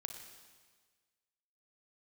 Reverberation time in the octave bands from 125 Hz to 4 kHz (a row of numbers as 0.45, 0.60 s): 1.6, 1.5, 1.5, 1.5, 1.5, 1.5 s